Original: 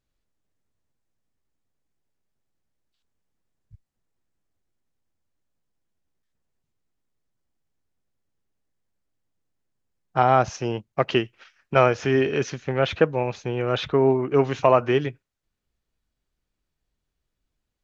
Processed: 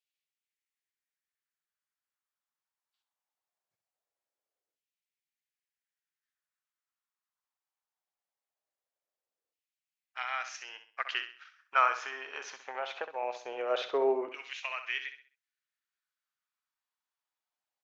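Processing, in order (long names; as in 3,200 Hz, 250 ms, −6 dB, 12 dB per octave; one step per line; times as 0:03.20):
high-pass filter 160 Hz 12 dB per octave
low-shelf EQ 420 Hz −5 dB
0:12.04–0:13.23: downward compressor, threshold −24 dBFS, peak gain reduction 10 dB
auto-filter high-pass saw down 0.21 Hz 470–2,700 Hz
repeating echo 65 ms, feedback 34%, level −10 dB
level −8.5 dB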